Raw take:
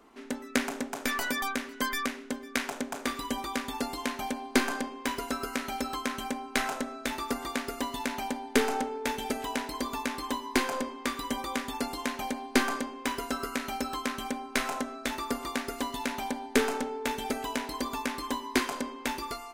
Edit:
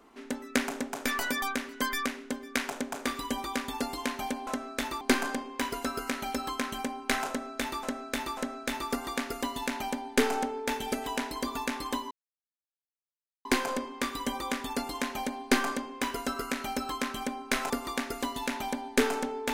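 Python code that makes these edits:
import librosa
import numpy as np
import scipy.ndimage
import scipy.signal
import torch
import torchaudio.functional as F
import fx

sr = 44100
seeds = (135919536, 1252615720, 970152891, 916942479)

y = fx.edit(x, sr, fx.repeat(start_s=6.75, length_s=0.54, count=3),
    fx.insert_silence(at_s=10.49, length_s=1.34),
    fx.move(start_s=14.74, length_s=0.54, to_s=4.47), tone=tone)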